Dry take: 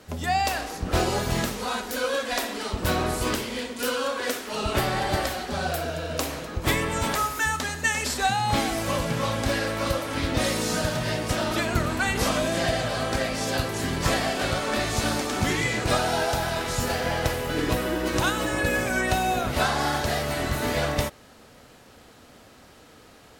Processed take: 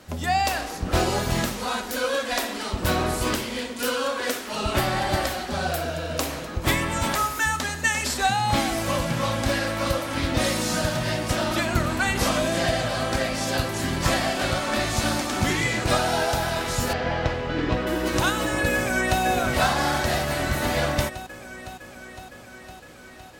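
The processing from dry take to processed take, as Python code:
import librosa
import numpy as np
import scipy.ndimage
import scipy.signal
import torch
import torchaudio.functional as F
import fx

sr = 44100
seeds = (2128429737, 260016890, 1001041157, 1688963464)

y = fx.air_absorb(x, sr, metres=170.0, at=(16.93, 17.87))
y = fx.echo_throw(y, sr, start_s=18.74, length_s=0.48, ms=510, feedback_pct=75, wet_db=-6.0)
y = fx.notch(y, sr, hz=440.0, q=12.0)
y = y * 10.0 ** (1.5 / 20.0)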